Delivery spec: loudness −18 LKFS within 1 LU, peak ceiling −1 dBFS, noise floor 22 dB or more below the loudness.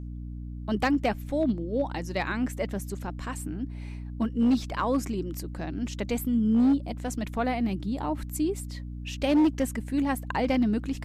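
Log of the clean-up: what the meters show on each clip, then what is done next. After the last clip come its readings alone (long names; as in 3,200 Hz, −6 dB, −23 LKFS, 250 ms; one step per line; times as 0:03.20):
share of clipped samples 0.9%; peaks flattened at −17.5 dBFS; mains hum 60 Hz; hum harmonics up to 300 Hz; level of the hum −35 dBFS; integrated loudness −28.5 LKFS; sample peak −17.5 dBFS; target loudness −18.0 LKFS
→ clipped peaks rebuilt −17.5 dBFS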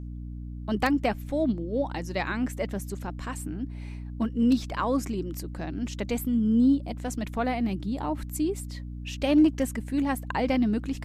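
share of clipped samples 0.0%; mains hum 60 Hz; hum harmonics up to 300 Hz; level of the hum −35 dBFS
→ mains-hum notches 60/120/180/240/300 Hz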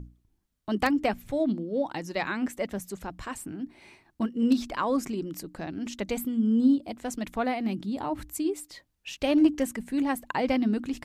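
mains hum none found; integrated loudness −28.5 LKFS; sample peak −10.5 dBFS; target loudness −18.0 LKFS
→ level +10.5 dB
brickwall limiter −1 dBFS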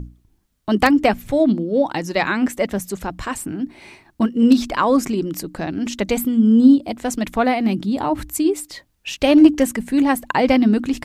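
integrated loudness −18.0 LKFS; sample peak −1.0 dBFS; background noise floor −63 dBFS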